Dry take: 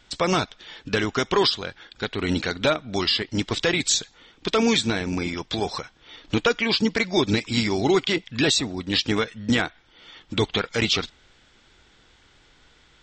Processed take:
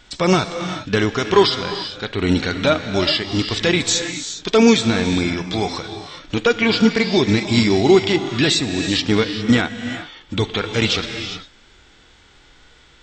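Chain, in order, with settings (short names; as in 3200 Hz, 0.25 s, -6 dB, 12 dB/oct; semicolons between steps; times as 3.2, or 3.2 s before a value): non-linear reverb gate 0.43 s rising, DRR 10.5 dB; harmonic-percussive split harmonic +9 dB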